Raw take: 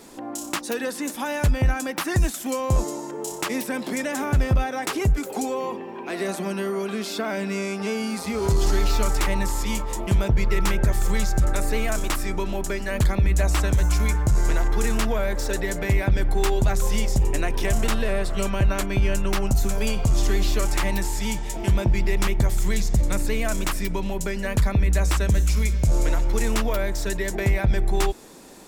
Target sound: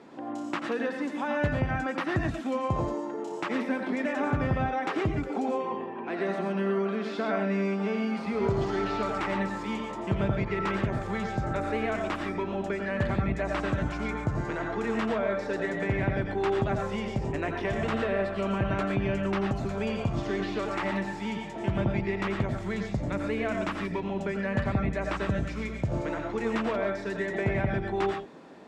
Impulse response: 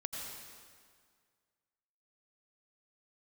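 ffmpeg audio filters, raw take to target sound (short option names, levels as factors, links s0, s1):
-filter_complex "[0:a]highpass=120,lowpass=2300[s0];[1:a]atrim=start_sample=2205,afade=t=out:st=0.19:d=0.01,atrim=end_sample=8820[s1];[s0][s1]afir=irnorm=-1:irlink=0"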